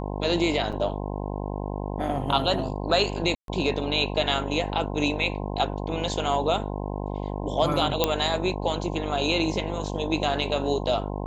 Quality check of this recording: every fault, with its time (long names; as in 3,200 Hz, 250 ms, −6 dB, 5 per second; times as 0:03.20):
mains buzz 50 Hz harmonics 21 −31 dBFS
0:00.72–0:00.73: drop-out 6.1 ms
0:03.35–0:03.48: drop-out 132 ms
0:08.04: click −5 dBFS